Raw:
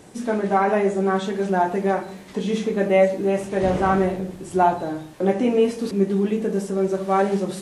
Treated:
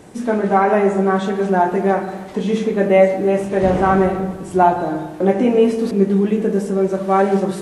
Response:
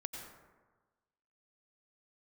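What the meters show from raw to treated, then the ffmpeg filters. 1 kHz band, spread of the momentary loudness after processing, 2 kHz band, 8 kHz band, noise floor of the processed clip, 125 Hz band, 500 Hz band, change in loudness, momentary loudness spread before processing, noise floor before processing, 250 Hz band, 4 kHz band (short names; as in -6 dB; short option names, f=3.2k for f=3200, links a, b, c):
+4.5 dB, 7 LU, +4.0 dB, n/a, -32 dBFS, +5.0 dB, +5.0 dB, +5.0 dB, 7 LU, -41 dBFS, +5.0 dB, +1.0 dB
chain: -filter_complex "[0:a]asplit=2[a][b];[1:a]atrim=start_sample=2205,lowpass=3k[c];[b][c]afir=irnorm=-1:irlink=0,volume=-2.5dB[d];[a][d]amix=inputs=2:normalize=0,volume=1dB"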